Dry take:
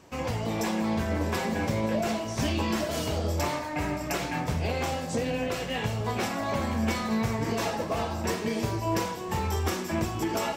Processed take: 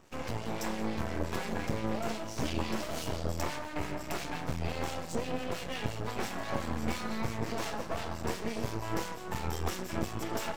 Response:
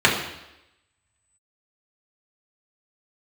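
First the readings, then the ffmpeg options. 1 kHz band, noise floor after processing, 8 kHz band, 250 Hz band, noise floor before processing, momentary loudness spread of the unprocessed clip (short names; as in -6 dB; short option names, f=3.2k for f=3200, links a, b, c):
-6.5 dB, -41 dBFS, -6.0 dB, -7.5 dB, -35 dBFS, 2 LU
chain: -filter_complex "[0:a]aeval=exprs='max(val(0),0)':c=same,acrossover=split=1800[a][b];[a]aeval=exprs='val(0)*(1-0.5/2+0.5/2*cos(2*PI*5.8*n/s))':c=same[c];[b]aeval=exprs='val(0)*(1-0.5/2-0.5/2*cos(2*PI*5.8*n/s))':c=same[d];[c][d]amix=inputs=2:normalize=0"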